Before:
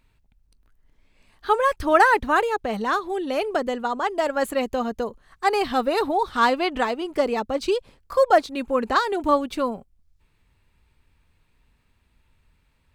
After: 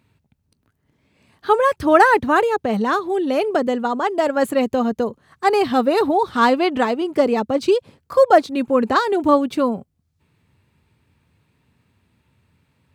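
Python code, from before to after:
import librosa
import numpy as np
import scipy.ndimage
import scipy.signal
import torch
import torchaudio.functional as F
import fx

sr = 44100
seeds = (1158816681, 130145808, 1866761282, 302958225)

y = scipy.signal.sosfilt(scipy.signal.butter(4, 95.0, 'highpass', fs=sr, output='sos'), x)
y = fx.low_shelf(y, sr, hz=440.0, db=9.0)
y = y * 10.0 ** (1.5 / 20.0)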